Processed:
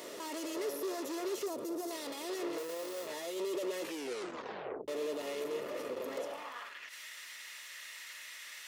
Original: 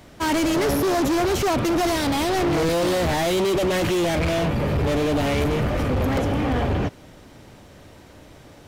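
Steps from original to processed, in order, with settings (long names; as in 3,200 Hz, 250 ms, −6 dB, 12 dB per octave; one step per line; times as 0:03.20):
0:02.58–0:03.07: each half-wave held at its own peak
high-shelf EQ 3,100 Hz +10 dB
notch comb filter 770 Hz
0:01.46–0:01.91: parametric band 2,400 Hz −14.5 dB 2.2 octaves
0:03.82: tape stop 1.06 s
brickwall limiter −34.5 dBFS, peak gain reduction 28.5 dB
high-pass filter sweep 430 Hz → 1,900 Hz, 0:06.14–0:06.81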